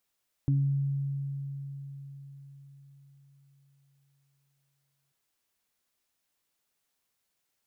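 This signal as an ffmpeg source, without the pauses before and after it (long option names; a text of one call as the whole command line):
ffmpeg -f lavfi -i "aevalsrc='0.0841*pow(10,-3*t/4.81)*sin(2*PI*139*t)+0.0335*pow(10,-3*t/0.48)*sin(2*PI*278*t)':duration=4.64:sample_rate=44100" out.wav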